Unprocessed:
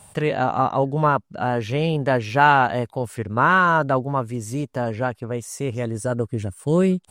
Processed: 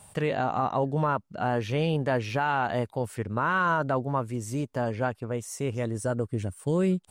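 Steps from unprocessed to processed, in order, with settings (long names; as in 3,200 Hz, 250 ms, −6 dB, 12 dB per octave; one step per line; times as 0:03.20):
brickwall limiter −12.5 dBFS, peak gain reduction 9.5 dB
level −4 dB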